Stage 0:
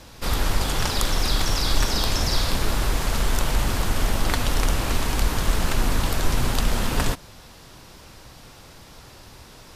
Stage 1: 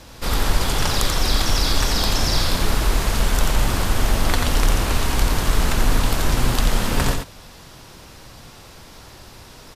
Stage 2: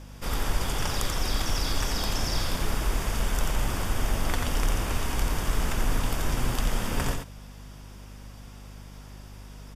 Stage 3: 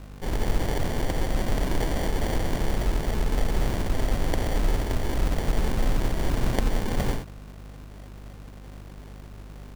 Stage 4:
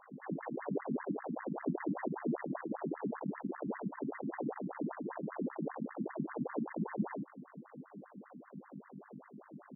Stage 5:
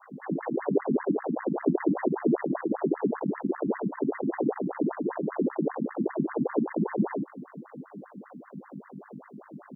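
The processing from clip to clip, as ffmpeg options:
-af "aecho=1:1:87:0.562,volume=2dB"
-af "aeval=exprs='val(0)+0.0178*(sin(2*PI*50*n/s)+sin(2*PI*2*50*n/s)/2+sin(2*PI*3*50*n/s)/3+sin(2*PI*4*50*n/s)/4+sin(2*PI*5*50*n/s)/5)':c=same,bandreject=f=4.1k:w=5.1,volume=-8dB"
-af "acrusher=samples=34:mix=1:aa=0.000001,volume=2dB"
-af "lowshelf=f=350:g=7,aresample=11025,asoftclip=type=tanh:threshold=-17.5dB,aresample=44100,afftfilt=real='re*between(b*sr/1024,210*pow(1500/210,0.5+0.5*sin(2*PI*5.1*pts/sr))/1.41,210*pow(1500/210,0.5+0.5*sin(2*PI*5.1*pts/sr))*1.41)':imag='im*between(b*sr/1024,210*pow(1500/210,0.5+0.5*sin(2*PI*5.1*pts/sr))/1.41,210*pow(1500/210,0.5+0.5*sin(2*PI*5.1*pts/sr))*1.41)':win_size=1024:overlap=0.75"
-af "adynamicequalizer=threshold=0.00316:dfrequency=380:dqfactor=1.5:tfrequency=380:tqfactor=1.5:attack=5:release=100:ratio=0.375:range=3.5:mode=boostabove:tftype=bell,volume=7dB"

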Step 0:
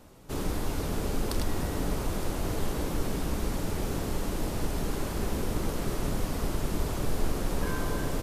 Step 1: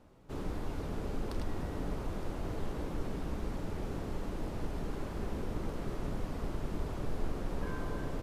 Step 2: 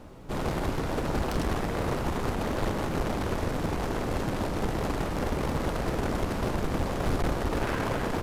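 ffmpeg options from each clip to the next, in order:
-af "lowpass=f=2.2k:p=1,volume=-6.5dB"
-af "aeval=exprs='0.0841*(cos(1*acos(clip(val(0)/0.0841,-1,1)))-cos(1*PI/2))+0.0335*(cos(7*acos(clip(val(0)/0.0841,-1,1)))-cos(7*PI/2))':c=same,asoftclip=type=hard:threshold=-30dB,volume=8.5dB"

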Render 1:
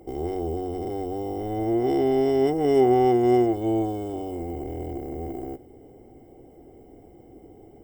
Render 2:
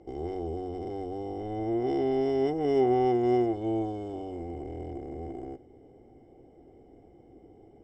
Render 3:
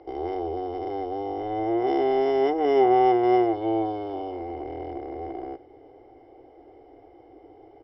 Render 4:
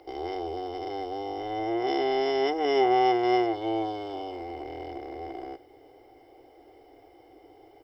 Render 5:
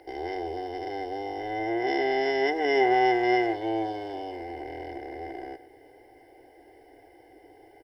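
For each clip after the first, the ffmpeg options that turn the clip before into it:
-af "lowpass=f=6.3k:w=0.5412,lowpass=f=6.3k:w=1.3066,volume=-5.5dB"
-af "firequalizer=gain_entry='entry(120,0);entry(180,-23);entry(290,6);entry(930,15);entry(2700,10);entry(4900,11);entry(7000,-16)':delay=0.05:min_phase=1,volume=-3dB"
-af "crystalizer=i=7.5:c=0,volume=-5dB"
-filter_complex "[0:a]superequalizer=10b=0.282:11b=2.51:13b=0.708:16b=2.51,asplit=2[a][b];[b]adelay=130,highpass=300,lowpass=3.4k,asoftclip=type=hard:threshold=-19.5dB,volume=-16dB[c];[a][c]amix=inputs=2:normalize=0"

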